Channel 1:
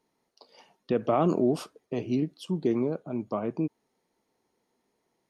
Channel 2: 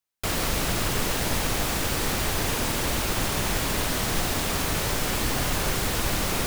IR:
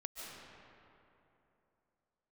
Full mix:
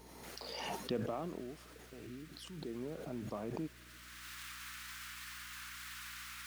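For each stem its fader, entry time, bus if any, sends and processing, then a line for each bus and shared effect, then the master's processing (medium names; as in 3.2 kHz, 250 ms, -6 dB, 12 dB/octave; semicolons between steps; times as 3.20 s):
0.94 s -11.5 dB -> 1.42 s -23.5 dB -> 2.50 s -23.5 dB -> 2.97 s -13 dB, 0.00 s, send -23.5 dB, treble shelf 8.3 kHz +6.5 dB; swell ahead of each attack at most 27 dB/s
-7.0 dB, 0.00 s, send -16 dB, steep high-pass 1.3 kHz 36 dB/octave; treble shelf 2.3 kHz -10 dB; peak limiter -33 dBFS, peak gain reduction 9 dB; auto duck -17 dB, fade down 0.65 s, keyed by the first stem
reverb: on, RT60 3.0 s, pre-delay 105 ms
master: hum 60 Hz, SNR 17 dB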